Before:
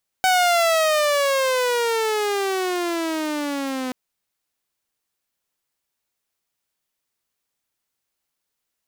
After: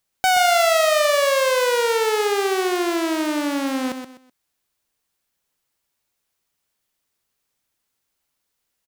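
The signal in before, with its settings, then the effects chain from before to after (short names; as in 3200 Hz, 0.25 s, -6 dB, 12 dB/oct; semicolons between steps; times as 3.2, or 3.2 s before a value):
gliding synth tone saw, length 3.68 s, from 755 Hz, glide -19 st, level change -10 dB, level -12 dB
in parallel at -8.5 dB: soft clip -29 dBFS; on the sum: low shelf 160 Hz +3.5 dB; feedback echo 0.126 s, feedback 28%, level -8 dB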